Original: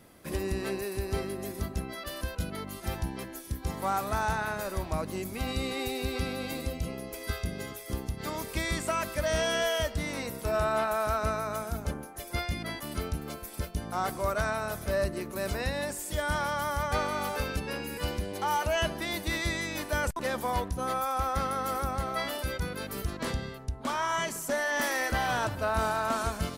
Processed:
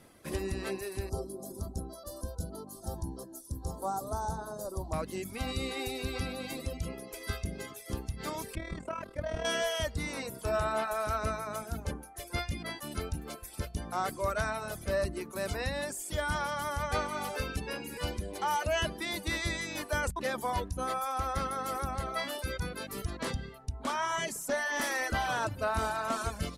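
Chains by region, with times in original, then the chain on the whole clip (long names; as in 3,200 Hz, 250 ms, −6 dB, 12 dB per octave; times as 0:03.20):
0:01.09–0:04.93: Butterworth band-reject 2,300 Hz, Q 0.52 + mains-hum notches 50/100/150/200/250/300/350/400/450 Hz
0:08.55–0:09.45: low-pass filter 1,000 Hz 6 dB per octave + amplitude modulation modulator 39 Hz, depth 50%
whole clip: reverb reduction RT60 0.78 s; Chebyshev low-pass filter 11,000 Hz, order 2; mains-hum notches 60/120/180/240 Hz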